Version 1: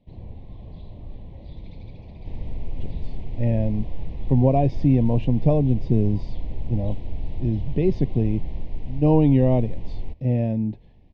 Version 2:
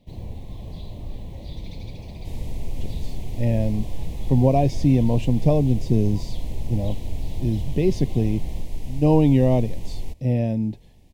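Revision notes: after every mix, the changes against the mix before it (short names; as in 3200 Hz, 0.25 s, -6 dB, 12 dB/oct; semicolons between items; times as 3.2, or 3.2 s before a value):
first sound +4.0 dB; second sound: remove air absorption 56 m; master: remove air absorption 290 m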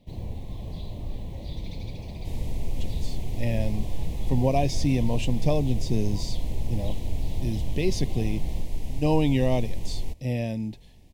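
speech: add tilt shelf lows -7 dB, about 1300 Hz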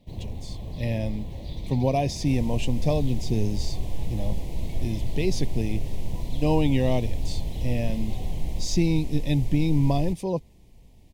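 speech: entry -2.60 s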